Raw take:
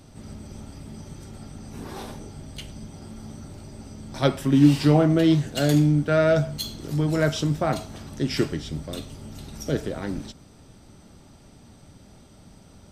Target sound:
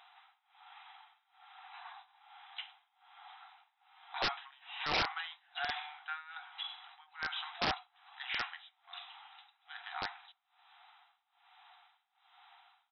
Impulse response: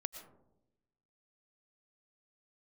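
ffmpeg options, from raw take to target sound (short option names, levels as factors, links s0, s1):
-filter_complex "[0:a]tremolo=f=1.2:d=0.95,afftfilt=real='re*between(b*sr/4096,690,4000)':imag='im*between(b*sr/4096,690,4000)':win_size=4096:overlap=0.75,acrossover=split=2800[s0][s1];[s1]acompressor=threshold=0.00447:ratio=4:attack=1:release=60[s2];[s0][s2]amix=inputs=2:normalize=0,aresample=11025,aeval=exprs='(mod(22.4*val(0)+1,2)-1)/22.4':c=same,aresample=44100,volume=1.19"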